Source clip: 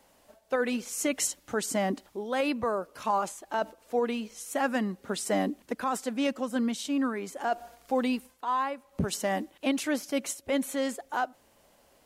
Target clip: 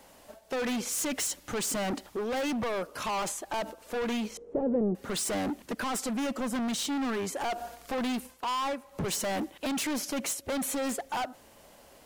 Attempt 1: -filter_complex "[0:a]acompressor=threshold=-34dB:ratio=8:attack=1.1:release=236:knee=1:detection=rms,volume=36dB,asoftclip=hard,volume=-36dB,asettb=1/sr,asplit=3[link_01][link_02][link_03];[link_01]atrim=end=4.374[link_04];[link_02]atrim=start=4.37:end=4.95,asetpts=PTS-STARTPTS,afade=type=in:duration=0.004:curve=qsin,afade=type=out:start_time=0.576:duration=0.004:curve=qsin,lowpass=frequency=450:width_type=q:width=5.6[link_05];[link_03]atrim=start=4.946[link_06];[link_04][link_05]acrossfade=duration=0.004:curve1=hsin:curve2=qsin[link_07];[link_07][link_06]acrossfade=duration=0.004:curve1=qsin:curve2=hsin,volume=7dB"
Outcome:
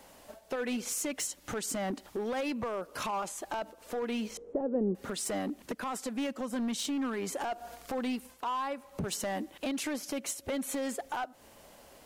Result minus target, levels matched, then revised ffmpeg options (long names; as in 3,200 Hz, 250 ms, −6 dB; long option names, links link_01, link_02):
downward compressor: peak gain reduction +9.5 dB
-filter_complex "[0:a]acompressor=threshold=-23dB:ratio=8:attack=1.1:release=236:knee=1:detection=rms,volume=36dB,asoftclip=hard,volume=-36dB,asettb=1/sr,asplit=3[link_01][link_02][link_03];[link_01]atrim=end=4.374[link_04];[link_02]atrim=start=4.37:end=4.95,asetpts=PTS-STARTPTS,afade=type=in:duration=0.004:curve=qsin,afade=type=out:start_time=0.576:duration=0.004:curve=qsin,lowpass=frequency=450:width_type=q:width=5.6[link_05];[link_03]atrim=start=4.946[link_06];[link_04][link_05]acrossfade=duration=0.004:curve1=hsin:curve2=qsin[link_07];[link_07][link_06]acrossfade=duration=0.004:curve1=qsin:curve2=hsin,volume=7dB"